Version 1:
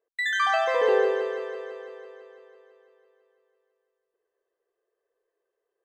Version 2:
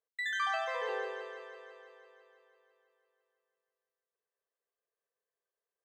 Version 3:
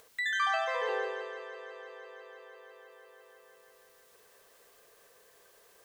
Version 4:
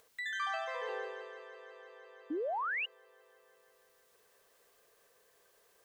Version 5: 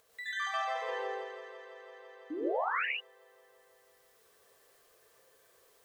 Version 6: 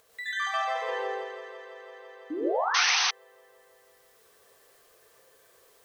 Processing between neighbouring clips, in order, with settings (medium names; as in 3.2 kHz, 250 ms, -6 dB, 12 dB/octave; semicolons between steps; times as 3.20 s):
high-pass 730 Hz 12 dB/octave; trim -8.5 dB
upward compressor, threshold -42 dBFS; trim +3.5 dB
painted sound rise, 2.30–2.86 s, 280–3000 Hz -28 dBFS; trim -7 dB
gated-style reverb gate 160 ms rising, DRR -4.5 dB; trim -3 dB
painted sound noise, 2.74–3.11 s, 700–6300 Hz -30 dBFS; trim +5 dB